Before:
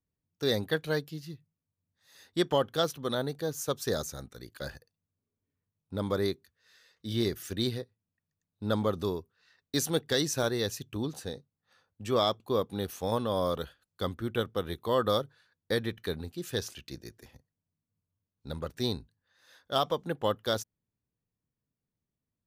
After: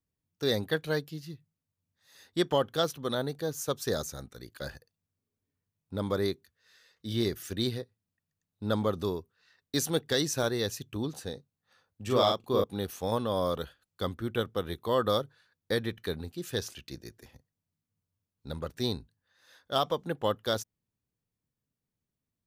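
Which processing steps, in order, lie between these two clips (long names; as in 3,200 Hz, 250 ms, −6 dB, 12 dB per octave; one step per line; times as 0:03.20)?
0:12.03–0:12.64: double-tracking delay 40 ms −2.5 dB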